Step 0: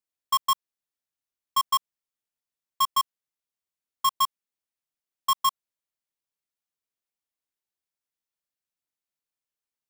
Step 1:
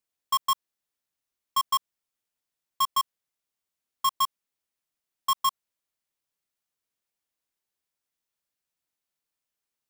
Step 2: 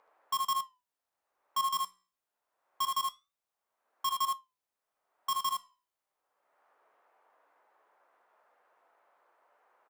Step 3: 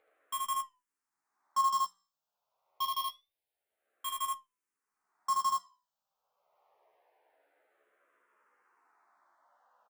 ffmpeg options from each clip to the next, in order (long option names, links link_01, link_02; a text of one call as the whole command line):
ffmpeg -i in.wav -af "alimiter=level_in=1dB:limit=-24dB:level=0:latency=1,volume=-1dB,volume=4dB" out.wav
ffmpeg -i in.wav -filter_complex "[0:a]acrossover=split=520|1300[link_01][link_02][link_03];[link_02]acompressor=mode=upward:threshold=-34dB:ratio=2.5[link_04];[link_01][link_04][link_03]amix=inputs=3:normalize=0,flanger=delay=8.9:depth=7.5:regen=76:speed=0.25:shape=sinusoidal,aecho=1:1:63|77:0.335|0.631,volume=-2.5dB" out.wav
ffmpeg -i in.wav -filter_complex "[0:a]asplit=2[link_01][link_02];[link_02]adelay=14,volume=-5dB[link_03];[link_01][link_03]amix=inputs=2:normalize=0,asplit=2[link_04][link_05];[link_05]afreqshift=-0.26[link_06];[link_04][link_06]amix=inputs=2:normalize=1" out.wav